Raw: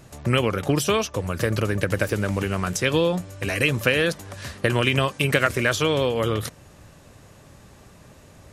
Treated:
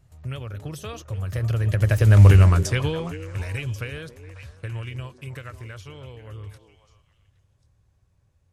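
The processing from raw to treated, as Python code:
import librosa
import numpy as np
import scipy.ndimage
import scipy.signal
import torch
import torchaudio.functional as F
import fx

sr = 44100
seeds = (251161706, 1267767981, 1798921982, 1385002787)

y = fx.doppler_pass(x, sr, speed_mps=18, closest_m=3.0, pass_at_s=2.28)
y = fx.low_shelf_res(y, sr, hz=150.0, db=12.5, q=1.5)
y = fx.echo_stepped(y, sr, ms=272, hz=320.0, octaves=1.4, feedback_pct=70, wet_db=-6.5)
y = F.gain(torch.from_numpy(y), 4.5).numpy()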